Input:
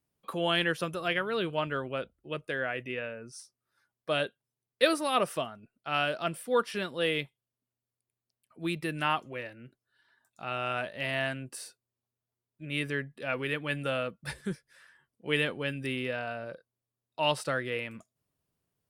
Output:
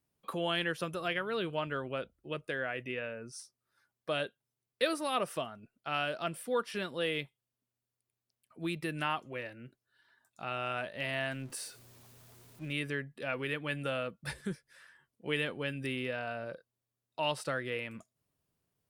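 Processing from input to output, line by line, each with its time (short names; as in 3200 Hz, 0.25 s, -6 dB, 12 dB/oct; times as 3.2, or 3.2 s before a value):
11.31–12.73 zero-crossing step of -50 dBFS
whole clip: compressor 1.5:1, threshold -37 dBFS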